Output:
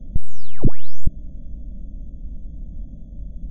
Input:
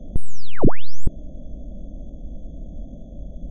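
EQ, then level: tone controls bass +11 dB, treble +2 dB; peaking EQ 1.2 kHz -6 dB 2 oct; -9.0 dB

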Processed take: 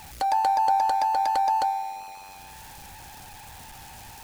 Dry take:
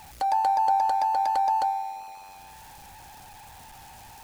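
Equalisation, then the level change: peaking EQ 810 Hz -4 dB 0.93 oct; +4.5 dB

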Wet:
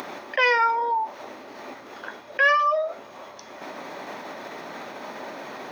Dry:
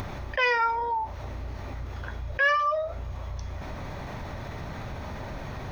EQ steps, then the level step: high-pass 260 Hz 24 dB/octave; +4.0 dB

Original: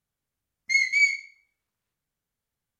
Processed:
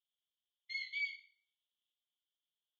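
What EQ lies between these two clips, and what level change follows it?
Butterworth band-pass 3.3 kHz, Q 5.4; distance through air 63 m; +7.0 dB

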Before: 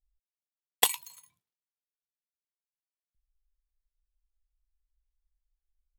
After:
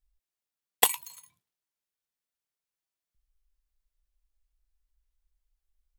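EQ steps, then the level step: dynamic bell 4.4 kHz, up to -6 dB, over -41 dBFS, Q 0.85; +3.5 dB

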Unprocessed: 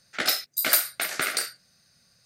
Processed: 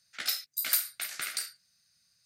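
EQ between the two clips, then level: amplifier tone stack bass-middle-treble 5-5-5; 0.0 dB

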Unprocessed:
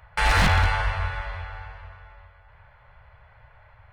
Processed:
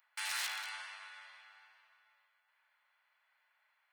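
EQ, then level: high-pass 750 Hz 12 dB/octave; differentiator; -5.0 dB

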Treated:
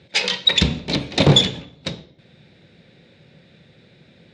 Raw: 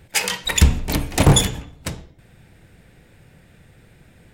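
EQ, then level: cabinet simulation 120–5100 Hz, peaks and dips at 160 Hz +5 dB, 230 Hz +5 dB, 380 Hz +5 dB, 550 Hz +8 dB, 2.3 kHz +3 dB, 3.8 kHz +10 dB; bass shelf 460 Hz +4 dB; treble shelf 3.2 kHz +11 dB; -5.5 dB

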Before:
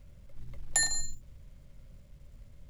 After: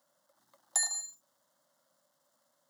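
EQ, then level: high-pass 360 Hz 24 dB/octave; static phaser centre 1 kHz, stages 4; 0.0 dB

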